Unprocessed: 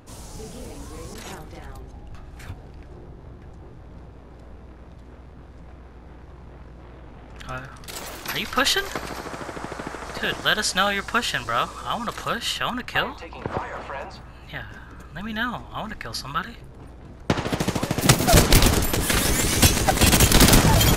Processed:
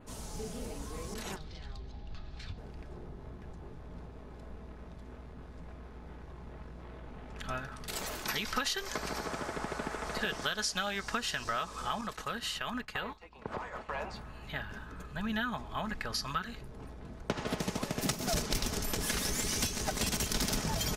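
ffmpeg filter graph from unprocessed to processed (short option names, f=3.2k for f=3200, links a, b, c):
-filter_complex "[0:a]asettb=1/sr,asplit=3[a][b][c];[a]atrim=end=1.364[d];[b]atrim=start=1.36:end=2.58,asetpts=PTS-STARTPTS,afade=t=in:d=0.004:c=qsin,afade=t=out:st=1.216:d=0.004:c=qsin,acrossover=split=160|3000[e][f][g];[f]acompressor=threshold=-49dB:ratio=4:attack=3.2:release=140:knee=2.83:detection=peak[h];[e][h][g]amix=inputs=3:normalize=0,lowpass=f=4.3k:t=q:w=2.4[i];[c]atrim=start=2.576[j];[d][i]acrossfade=d=0.004:c1=hsin:c2=qsin[k];[k][j]acrossfade=d=0.004:c1=qsin:c2=hsin,asettb=1/sr,asplit=3[l][m][n];[l]atrim=end=12.014[o];[m]atrim=start=12.01:end=13.89,asetpts=PTS-STARTPTS,afade=t=in:d=0.004:c=qsin,afade=t=out:st=1.876:d=0.004:c=qsin,agate=range=-33dB:threshold=-29dB:ratio=3:release=100:detection=peak,acompressor=threshold=-31dB:ratio=2.5:attack=3.2:release=140:knee=1:detection=peak[p];[n]atrim=start=13.886[q];[o][p]acrossfade=d=0.004:c1=hsin:c2=qsin[r];[r][q]acrossfade=d=0.004:c1=qsin:c2=hsin,adynamicequalizer=threshold=0.0112:dfrequency=5600:dqfactor=2.2:tfrequency=5600:tqfactor=2.2:attack=5:release=100:ratio=0.375:range=3.5:mode=boostabove:tftype=bell,acompressor=threshold=-27dB:ratio=6,aecho=1:1:4.7:0.32,volume=-4dB"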